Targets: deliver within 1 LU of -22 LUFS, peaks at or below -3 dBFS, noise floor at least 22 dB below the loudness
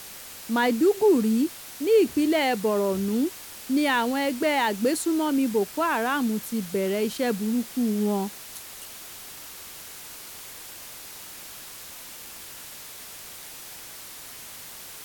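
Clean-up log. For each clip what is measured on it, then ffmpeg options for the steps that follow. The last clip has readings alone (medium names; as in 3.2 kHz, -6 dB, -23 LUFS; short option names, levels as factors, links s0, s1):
noise floor -42 dBFS; noise floor target -47 dBFS; loudness -24.5 LUFS; peak level -11.0 dBFS; loudness target -22.0 LUFS
-> -af "afftdn=nr=6:nf=-42"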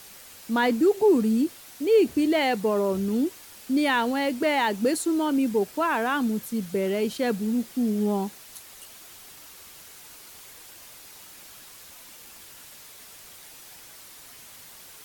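noise floor -47 dBFS; loudness -24.5 LUFS; peak level -11.0 dBFS; loudness target -22.0 LUFS
-> -af "volume=1.33"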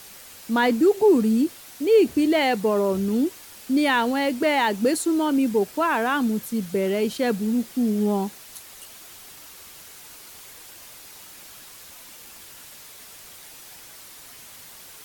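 loudness -22.0 LUFS; peak level -8.5 dBFS; noise floor -45 dBFS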